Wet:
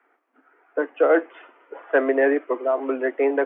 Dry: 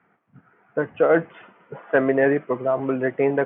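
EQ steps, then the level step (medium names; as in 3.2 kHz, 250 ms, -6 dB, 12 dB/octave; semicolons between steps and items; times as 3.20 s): steep high-pass 270 Hz 72 dB/octave; 0.0 dB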